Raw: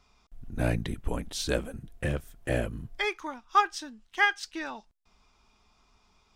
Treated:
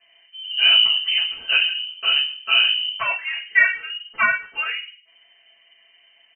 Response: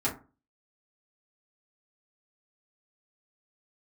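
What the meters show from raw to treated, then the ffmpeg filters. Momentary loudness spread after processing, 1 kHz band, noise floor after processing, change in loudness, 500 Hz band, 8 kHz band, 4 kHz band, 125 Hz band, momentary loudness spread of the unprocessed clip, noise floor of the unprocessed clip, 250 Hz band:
13 LU, 0.0 dB, -57 dBFS, +12.5 dB, -8.0 dB, under -35 dB, +23.5 dB, under -20 dB, 14 LU, -67 dBFS, under -15 dB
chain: -filter_complex "[0:a]asplit=2[s0][s1];[s1]adelay=114,lowpass=f=1300:p=1,volume=0.1,asplit=2[s2][s3];[s3]adelay=114,lowpass=f=1300:p=1,volume=0.26[s4];[s0][s2][s4]amix=inputs=3:normalize=0[s5];[1:a]atrim=start_sample=2205,asetrate=36603,aresample=44100[s6];[s5][s6]afir=irnorm=-1:irlink=0,lowpass=f=2600:t=q:w=0.5098,lowpass=f=2600:t=q:w=0.6013,lowpass=f=2600:t=q:w=0.9,lowpass=f=2600:t=q:w=2.563,afreqshift=-3100"

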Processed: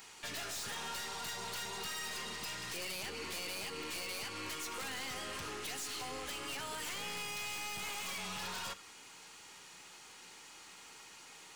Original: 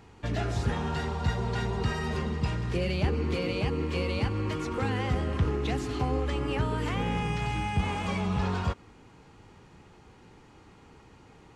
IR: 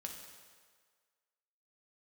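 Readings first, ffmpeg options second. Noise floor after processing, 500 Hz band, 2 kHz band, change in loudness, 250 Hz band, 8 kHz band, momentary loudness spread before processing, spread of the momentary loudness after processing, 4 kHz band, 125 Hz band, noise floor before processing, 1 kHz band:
-55 dBFS, -15.5 dB, -4.5 dB, -10.0 dB, -20.0 dB, +8.0 dB, 3 LU, 13 LU, 0.0 dB, -27.0 dB, -55 dBFS, -10.0 dB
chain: -filter_complex "[0:a]aderivative,acompressor=threshold=0.00251:ratio=2,aeval=exprs='(mod(150*val(0)+1,2)-1)/150':c=same,aeval=exprs='(tanh(631*val(0)+0.3)-tanh(0.3))/631':c=same,asplit=2[s0][s1];[1:a]atrim=start_sample=2205,atrim=end_sample=3969[s2];[s1][s2]afir=irnorm=-1:irlink=0,volume=0.891[s3];[s0][s3]amix=inputs=2:normalize=0,volume=4.73"

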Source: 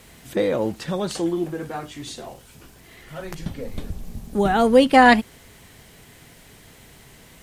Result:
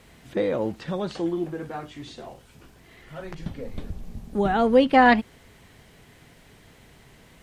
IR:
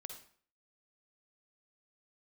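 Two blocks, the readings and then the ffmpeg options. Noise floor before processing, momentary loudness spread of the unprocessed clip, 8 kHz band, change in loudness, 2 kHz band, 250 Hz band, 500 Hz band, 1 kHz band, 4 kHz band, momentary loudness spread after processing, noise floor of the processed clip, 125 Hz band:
-49 dBFS, 23 LU, under -10 dB, -3.0 dB, -4.0 dB, -3.0 dB, -3.0 dB, -3.0 dB, -6.0 dB, 23 LU, -54 dBFS, -3.0 dB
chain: -filter_complex "[0:a]highshelf=f=5600:g=-9.5,acrossover=split=5600[s0][s1];[s1]acompressor=threshold=0.00178:ratio=4:attack=1:release=60[s2];[s0][s2]amix=inputs=2:normalize=0,volume=0.708"

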